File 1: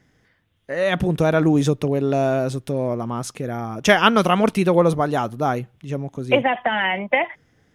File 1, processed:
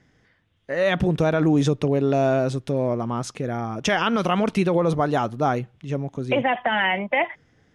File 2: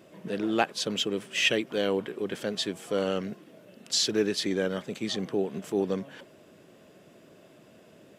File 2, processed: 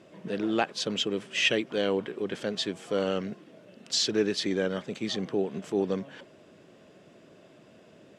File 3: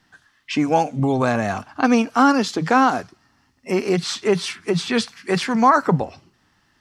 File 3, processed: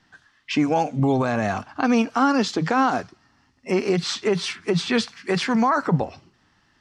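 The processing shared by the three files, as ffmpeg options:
ffmpeg -i in.wav -af "lowpass=7200,alimiter=limit=-11dB:level=0:latency=1:release=53" out.wav

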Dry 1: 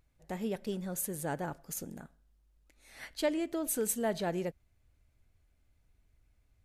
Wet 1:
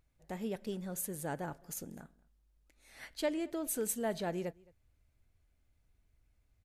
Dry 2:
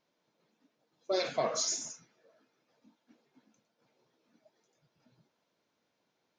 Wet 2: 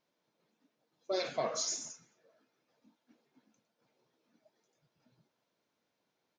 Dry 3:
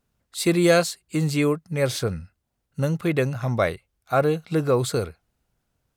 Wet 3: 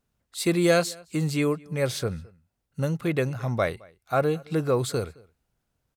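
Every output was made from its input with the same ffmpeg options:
ffmpeg -i in.wav -filter_complex "[0:a]asplit=2[link_01][link_02];[link_02]adelay=215.7,volume=-25dB,highshelf=frequency=4000:gain=-4.85[link_03];[link_01][link_03]amix=inputs=2:normalize=0,volume=-3dB" out.wav

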